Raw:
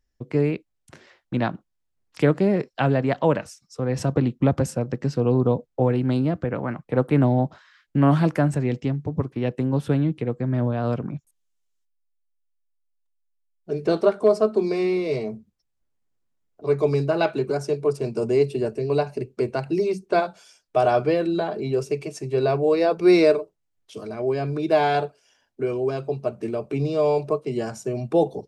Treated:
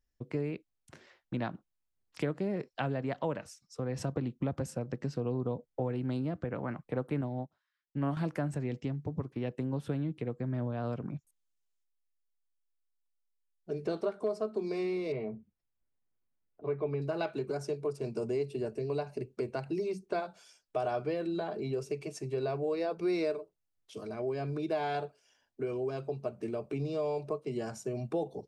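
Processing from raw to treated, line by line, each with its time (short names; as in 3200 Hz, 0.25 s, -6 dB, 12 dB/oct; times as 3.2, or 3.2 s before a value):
7.21–8.17 upward expander 2.5:1, over -30 dBFS
15.12–17.02 LPF 2900 Hz 24 dB/oct
whole clip: compressor 2.5:1, threshold -25 dBFS; gain -7 dB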